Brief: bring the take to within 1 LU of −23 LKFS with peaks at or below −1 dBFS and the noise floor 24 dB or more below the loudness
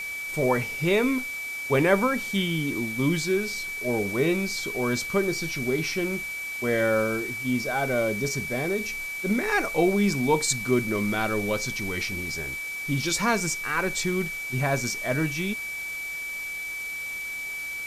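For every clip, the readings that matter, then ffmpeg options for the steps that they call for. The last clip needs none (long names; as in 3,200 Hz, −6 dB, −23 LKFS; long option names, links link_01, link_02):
interfering tone 2,300 Hz; level of the tone −31 dBFS; background noise floor −34 dBFS; target noise floor −50 dBFS; integrated loudness −26.0 LKFS; sample peak −9.0 dBFS; target loudness −23.0 LKFS
→ -af "bandreject=frequency=2300:width=30"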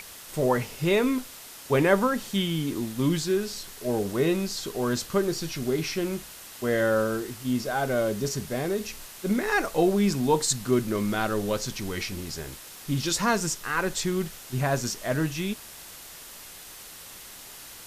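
interfering tone none found; background noise floor −45 dBFS; target noise floor −51 dBFS
→ -af "afftdn=noise_reduction=6:noise_floor=-45"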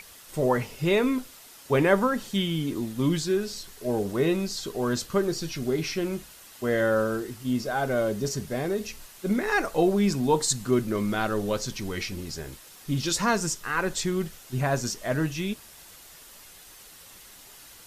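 background noise floor −49 dBFS; target noise floor −51 dBFS
→ -af "afftdn=noise_reduction=6:noise_floor=-49"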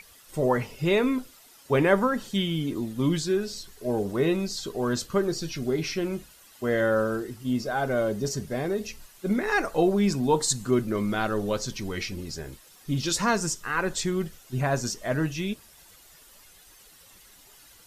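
background noise floor −54 dBFS; integrated loudness −27.0 LKFS; sample peak −9.0 dBFS; target loudness −23.0 LKFS
→ -af "volume=4dB"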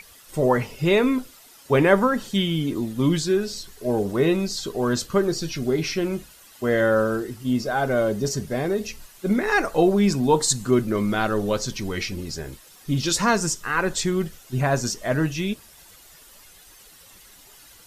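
integrated loudness −23.0 LKFS; sample peak −5.0 dBFS; background noise floor −50 dBFS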